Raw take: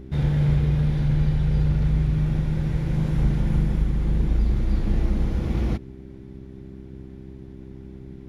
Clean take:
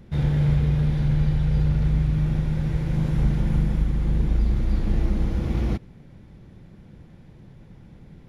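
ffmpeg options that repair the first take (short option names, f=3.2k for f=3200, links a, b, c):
-af "bandreject=f=65.6:t=h:w=4,bandreject=f=131.2:t=h:w=4,bandreject=f=196.8:t=h:w=4,bandreject=f=262.4:t=h:w=4,bandreject=f=328:t=h:w=4,bandreject=f=393.6:t=h:w=4"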